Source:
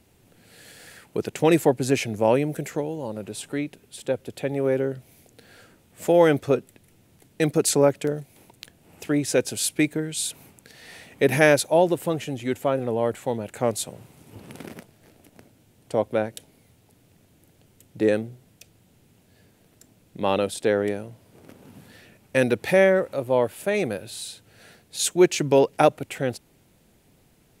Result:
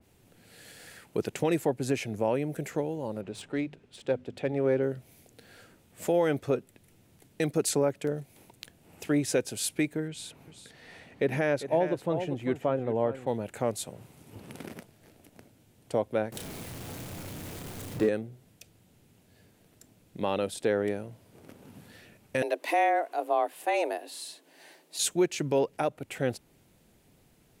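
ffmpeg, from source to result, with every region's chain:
-filter_complex "[0:a]asettb=1/sr,asplit=3[s0][s1][s2];[s0]atrim=end=3.214[s3];[s1]atrim=start=3.21:end=4.83,asetpts=PTS-STARTPTS,afade=t=in:d=0.004:c=qsin,afade=t=out:st=1.616:d=0.004:c=qsin,adynamicsmooth=sensitivity=5.5:basefreq=4100,bandreject=f=50:t=h:w=6,bandreject=f=100:t=h:w=6,bandreject=f=150:t=h:w=6,bandreject=f=200:t=h:w=6,bandreject=f=250:t=h:w=6[s4];[s2]atrim=start=4.826[s5];[s3][s4]acrossfade=d=0.004:c1=hsin:c2=qsin[s6];[s6][s5]acrossfade=d=0.004:c1=qsin:c2=hsin,asettb=1/sr,asplit=3[s7][s8][s9];[s7]atrim=end=10.084[s10];[s8]atrim=start=10.08:end=13.27,asetpts=PTS-STARTPTS,afade=t=in:d=0.004:c=qsin,afade=t=out:st=3.186:d=0.004:c=qsin,lowpass=f=2300:p=1,aecho=1:1:396:0.237,atrim=end_sample=140679[s11];[s9]atrim=start=13.266[s12];[s10][s11]acrossfade=d=0.004:c1=hsin:c2=qsin[s13];[s13][s12]acrossfade=d=0.004:c1=qsin:c2=hsin,asettb=1/sr,asplit=3[s14][s15][s16];[s14]atrim=end=16.324[s17];[s15]atrim=start=16.32:end=18.09,asetpts=PTS-STARTPTS,afade=t=in:d=0.004:c=qsin,afade=t=out:st=1.766:d=0.004:c=qsin,aeval=exprs='val(0)+0.5*0.0224*sgn(val(0))':c=same,asplit=2[s18][s19];[s19]adelay=32,volume=0.562[s20];[s18][s20]amix=inputs=2:normalize=0,atrim=end_sample=78057[s21];[s16]atrim=start=18.086[s22];[s17][s21]acrossfade=d=0.004:c1=hsin:c2=qsin[s23];[s23][s22]acrossfade=d=0.004:c1=qsin:c2=hsin,asettb=1/sr,asplit=3[s24][s25][s26];[s24]atrim=end=22.424[s27];[s25]atrim=start=22.42:end=24.99,asetpts=PTS-STARTPTS,afade=t=in:d=0.004:c=qsin,afade=t=out:st=2.566:d=0.004:c=qsin,equalizer=f=67:w=1.2:g=-14.5,afreqshift=160[s28];[s26]atrim=start=24.986[s29];[s27][s28]acrossfade=d=0.004:c1=hsin:c2=qsin[s30];[s30][s29]acrossfade=d=0.004:c1=qsin:c2=hsin,alimiter=limit=0.237:level=0:latency=1:release=382,adynamicequalizer=threshold=0.00562:dfrequency=2700:dqfactor=0.7:tfrequency=2700:tqfactor=0.7:attack=5:release=100:ratio=0.375:range=1.5:mode=cutabove:tftype=highshelf,volume=0.708"

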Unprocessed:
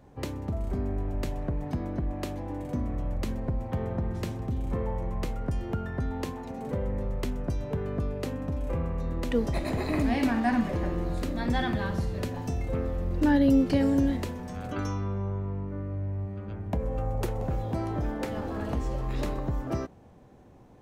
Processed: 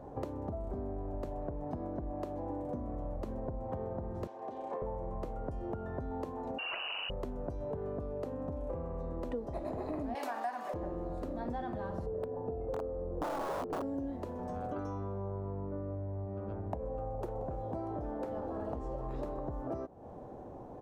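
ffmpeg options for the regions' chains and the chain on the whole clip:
-filter_complex "[0:a]asettb=1/sr,asplit=3[s0][s1][s2];[s0]atrim=end=4.274[s3];[s1]atrim=start=4.27:end=4.82,asetpts=PTS-STARTPTS,afade=t=in:d=0.004:c=qsin,afade=t=out:st=0.546:d=0.004:c=qsin,highpass=650,lowpass=5800,bandreject=f=1300:w=6.1[s4];[s2]atrim=start=4.816[s5];[s3][s4]acrossfade=d=0.004:c1=hsin:c2=qsin[s6];[s6][s5]acrossfade=d=0.004:c1=qsin:c2=hsin,asettb=1/sr,asplit=3[s7][s8][s9];[s7]atrim=end=6.584[s10];[s8]atrim=start=6.58:end=7.1,asetpts=PTS-STARTPTS,afade=t=in:d=0.004:c=qsin,afade=t=out:st=0.516:d=0.004:c=qsin,asuperstop=centerf=650:order=20:qfactor=0.82,aeval=exprs='0.1*sin(PI/2*5.01*val(0)/0.1)':c=same,lowpass=f=2600:t=q:w=0.5098,lowpass=f=2600:t=q:w=0.6013,lowpass=f=2600:t=q:w=0.9,lowpass=f=2600:t=q:w=2.563,afreqshift=-3000[s11];[s9]atrim=start=7.096[s12];[s10][s11]acrossfade=d=0.004:c1=hsin:c2=qsin[s13];[s13][s12]acrossfade=d=0.004:c1=qsin:c2=hsin,asettb=1/sr,asplit=3[s14][s15][s16];[s14]atrim=end=10.154[s17];[s15]atrim=start=10.15:end=10.74,asetpts=PTS-STARTPTS,afade=t=in:d=0.004:c=qsin,afade=t=out:st=0.586:d=0.004:c=qsin,highpass=770,highshelf=f=3700:g=11.5,acontrast=80[s18];[s16]atrim=start=10.736[s19];[s17][s18]acrossfade=d=0.004:c1=hsin:c2=qsin[s20];[s20][s19]acrossfade=d=0.004:c1=qsin:c2=hsin,asettb=1/sr,asplit=3[s21][s22][s23];[s21]atrim=end=12.064[s24];[s22]atrim=start=12.06:end=13.82,asetpts=PTS-STARTPTS,afade=t=in:d=0.004:c=qsin,afade=t=out:st=1.756:d=0.004:c=qsin,lowpass=1300,equalizer=f=460:t=o:w=0.26:g=13.5,aeval=exprs='(mod(7.5*val(0)+1,2)-1)/7.5':c=same[s25];[s23]atrim=start=13.816[s26];[s24][s25]acrossfade=d=0.004:c1=hsin:c2=qsin[s27];[s27][s26]acrossfade=d=0.004:c1=qsin:c2=hsin,firequalizer=gain_entry='entry(190,0);entry(300,5);entry(630,10);entry(2100,-9)':delay=0.05:min_phase=1,acompressor=threshold=0.0112:ratio=6,volume=1.33"

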